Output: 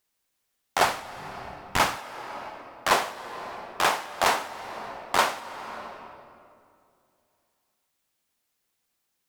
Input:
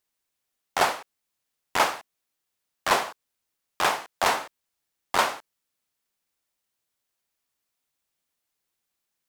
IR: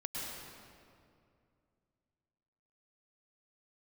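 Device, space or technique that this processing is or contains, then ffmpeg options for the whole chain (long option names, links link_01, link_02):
ducked reverb: -filter_complex "[0:a]asplit=3[link_01][link_02][link_03];[1:a]atrim=start_sample=2205[link_04];[link_02][link_04]afir=irnorm=-1:irlink=0[link_05];[link_03]apad=whole_len=409577[link_06];[link_05][link_06]sidechaincompress=threshold=-36dB:ratio=16:attack=21:release=423,volume=-3dB[link_07];[link_01][link_07]amix=inputs=2:normalize=0,asplit=3[link_08][link_09][link_10];[link_08]afade=type=out:start_time=0.83:duration=0.02[link_11];[link_09]asubboost=boost=7.5:cutoff=200,afade=type=in:start_time=0.83:duration=0.02,afade=type=out:start_time=1.96:duration=0.02[link_12];[link_10]afade=type=in:start_time=1.96:duration=0.02[link_13];[link_11][link_12][link_13]amix=inputs=3:normalize=0"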